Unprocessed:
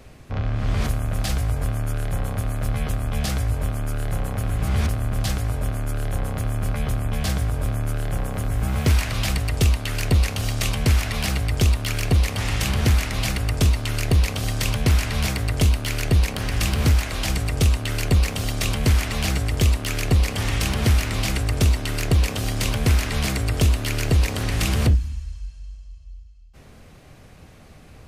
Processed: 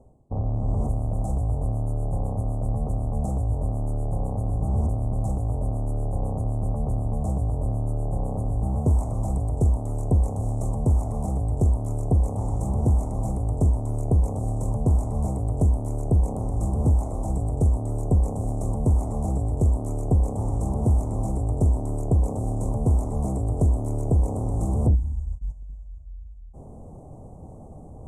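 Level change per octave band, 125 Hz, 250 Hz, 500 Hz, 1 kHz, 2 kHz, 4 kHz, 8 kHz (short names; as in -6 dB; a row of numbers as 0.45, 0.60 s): -1.5 dB, -1.0 dB, -1.0 dB, -3.0 dB, under -40 dB, under -35 dB, -14.5 dB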